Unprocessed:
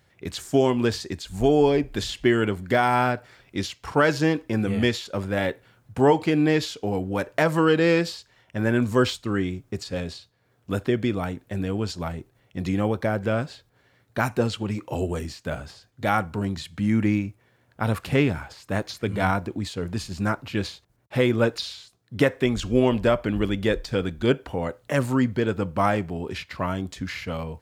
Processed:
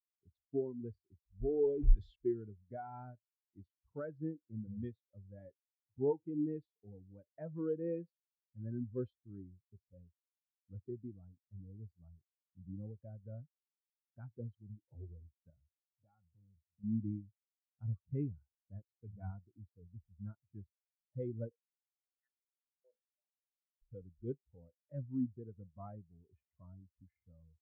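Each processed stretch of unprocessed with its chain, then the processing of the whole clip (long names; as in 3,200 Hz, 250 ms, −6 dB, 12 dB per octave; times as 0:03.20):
0:01.49–0:02.16: converter with a step at zero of −21.5 dBFS + low-shelf EQ 380 Hz −4 dB + level that may fall only so fast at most 27 dB per second
0:15.50–0:16.84: high-pass filter 42 Hz + downward compressor 5 to 1, threshold −25 dBFS + saturating transformer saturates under 720 Hz
0:21.51–0:23.82: downward compressor 2.5 to 1, threshold −40 dBFS + high-pass on a step sequencer 6 Hz 520–6,000 Hz
whole clip: adaptive Wiener filter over 9 samples; low-shelf EQ 100 Hz +11.5 dB; every bin expanded away from the loudest bin 2.5 to 1; level −9 dB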